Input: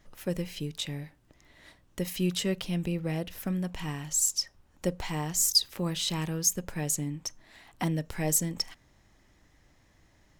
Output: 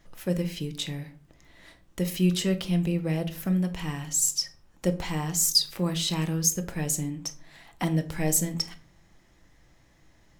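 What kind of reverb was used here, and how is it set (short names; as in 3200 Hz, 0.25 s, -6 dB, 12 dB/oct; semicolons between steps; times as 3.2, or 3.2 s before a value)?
shoebox room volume 360 m³, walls furnished, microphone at 0.75 m; gain +1.5 dB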